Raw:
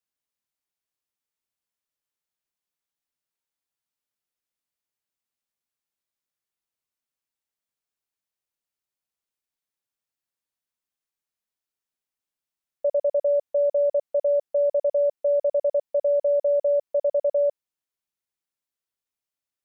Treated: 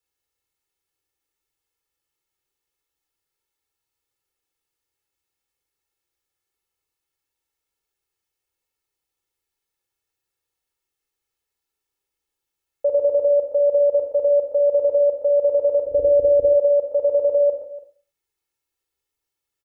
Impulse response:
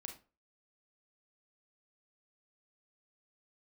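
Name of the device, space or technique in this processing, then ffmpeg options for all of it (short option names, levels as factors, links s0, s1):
microphone above a desk: -filter_complex "[0:a]lowshelf=f=480:g=4,aecho=1:1:122|144|291:0.266|0.141|0.133,asplit=3[s0][s1][s2];[s0]afade=t=out:st=15.84:d=0.02[s3];[s1]asubboost=boost=11:cutoff=250,afade=t=in:st=15.84:d=0.02,afade=t=out:st=16.53:d=0.02[s4];[s2]afade=t=in:st=16.53:d=0.02[s5];[s3][s4][s5]amix=inputs=3:normalize=0,aecho=1:1:2.3:0.85[s6];[1:a]atrim=start_sample=2205[s7];[s6][s7]afir=irnorm=-1:irlink=0,volume=2.51"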